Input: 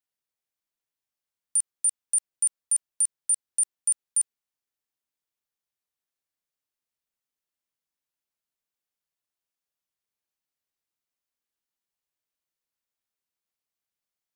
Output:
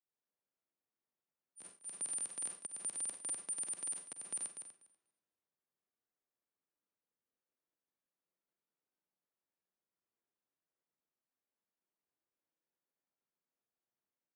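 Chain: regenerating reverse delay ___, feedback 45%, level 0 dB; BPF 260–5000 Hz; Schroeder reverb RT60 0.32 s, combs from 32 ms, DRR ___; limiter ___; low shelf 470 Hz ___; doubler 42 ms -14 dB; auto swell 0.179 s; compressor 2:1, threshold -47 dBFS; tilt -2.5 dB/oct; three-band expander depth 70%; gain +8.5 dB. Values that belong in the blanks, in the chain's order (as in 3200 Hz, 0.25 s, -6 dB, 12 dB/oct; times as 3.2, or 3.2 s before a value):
0.122 s, 9 dB, -34 dBFS, +5 dB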